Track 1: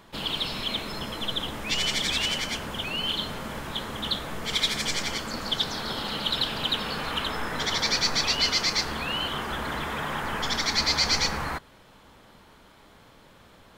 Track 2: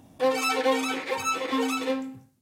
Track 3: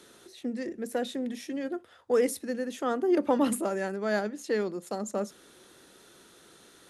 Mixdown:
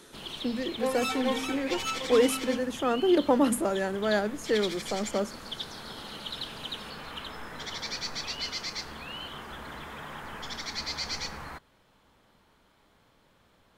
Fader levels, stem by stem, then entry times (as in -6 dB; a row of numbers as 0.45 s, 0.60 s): -10.5 dB, -6.5 dB, +2.0 dB; 0.00 s, 0.60 s, 0.00 s